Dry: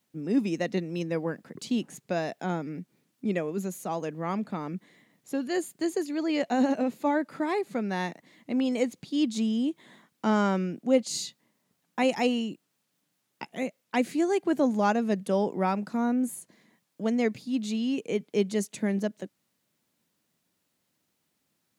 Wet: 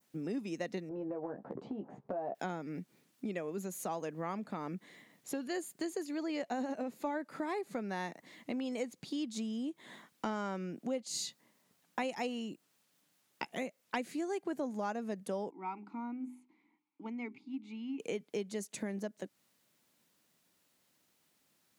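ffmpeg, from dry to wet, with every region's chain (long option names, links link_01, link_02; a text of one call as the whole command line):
ffmpeg -i in.wav -filter_complex "[0:a]asettb=1/sr,asplit=3[link_01][link_02][link_03];[link_01]atrim=end=0.894[link_04];[link_02]atrim=start=0.89:end=2.35,asetpts=PTS-STARTPTS,afade=type=in:duration=0.004:curve=qsin,afade=type=out:start_time=1.456:duration=0.004:curve=qsin,lowpass=frequency=780:width_type=q:width=2.4,acompressor=threshold=-34dB:ratio=4:attack=3.2:release=140:knee=1:detection=peak,asplit=2[link_05][link_06];[link_06]adelay=15,volume=-5dB[link_07];[link_05][link_07]amix=inputs=2:normalize=0,atrim=end_sample=64386[link_08];[link_03]atrim=start=2.346[link_09];[link_04][link_08]acrossfade=duration=0.004:curve1=hsin:curve2=qsin[link_10];[link_10][link_09]acrossfade=duration=0.004:curve1=qsin:curve2=hsin,asettb=1/sr,asplit=3[link_11][link_12][link_13];[link_11]atrim=end=15.504[link_14];[link_12]atrim=start=15.5:end=18,asetpts=PTS-STARTPTS,afade=type=in:duration=0.004:curve=qsin,afade=type=out:start_time=2.496:duration=0.004:curve=qsin,asplit=3[link_15][link_16][link_17];[link_15]bandpass=frequency=300:width_type=q:width=8,volume=0dB[link_18];[link_16]bandpass=frequency=870:width_type=q:width=8,volume=-6dB[link_19];[link_17]bandpass=frequency=2240:width_type=q:width=8,volume=-9dB[link_20];[link_18][link_19][link_20]amix=inputs=3:normalize=0,equalizer=frequency=1400:width_type=o:width=0.54:gain=11,bandreject=frequency=50:width_type=h:width=6,bandreject=frequency=100:width_type=h:width=6,bandreject=frequency=150:width_type=h:width=6,bandreject=frequency=200:width_type=h:width=6,bandreject=frequency=250:width_type=h:width=6,bandreject=frequency=300:width_type=h:width=6,bandreject=frequency=350:width_type=h:width=6,bandreject=frequency=400:width_type=h:width=6[link_21];[link_13]atrim=start=17.996[link_22];[link_14][link_21]acrossfade=duration=0.004:curve1=hsin:curve2=qsin[link_23];[link_23][link_22]acrossfade=duration=0.004:curve1=qsin:curve2=hsin,adynamicequalizer=threshold=0.00282:dfrequency=3100:dqfactor=1.2:tfrequency=3100:tqfactor=1.2:attack=5:release=100:ratio=0.375:range=2.5:mode=cutabove:tftype=bell,acompressor=threshold=-37dB:ratio=4,equalizer=frequency=100:width=0.33:gain=-5.5,volume=3dB" out.wav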